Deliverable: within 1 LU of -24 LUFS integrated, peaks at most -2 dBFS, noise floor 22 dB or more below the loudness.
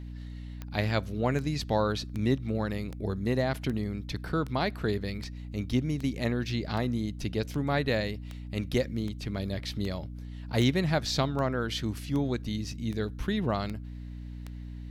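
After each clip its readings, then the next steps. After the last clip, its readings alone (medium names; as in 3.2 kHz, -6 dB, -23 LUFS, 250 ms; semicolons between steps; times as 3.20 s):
clicks found 19; hum 60 Hz; highest harmonic 300 Hz; hum level -38 dBFS; loudness -31.0 LUFS; peak level -12.5 dBFS; loudness target -24.0 LUFS
-> de-click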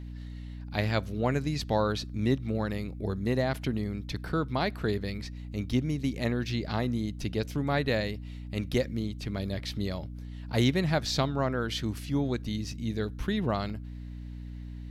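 clicks found 0; hum 60 Hz; highest harmonic 300 Hz; hum level -38 dBFS
-> de-hum 60 Hz, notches 5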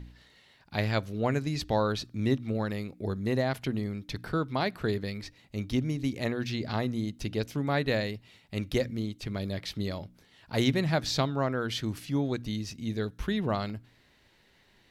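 hum not found; loudness -31.5 LUFS; peak level -12.5 dBFS; loudness target -24.0 LUFS
-> trim +7.5 dB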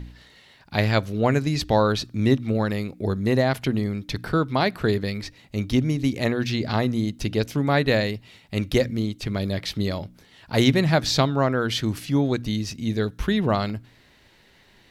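loudness -24.0 LUFS; peak level -5.0 dBFS; noise floor -56 dBFS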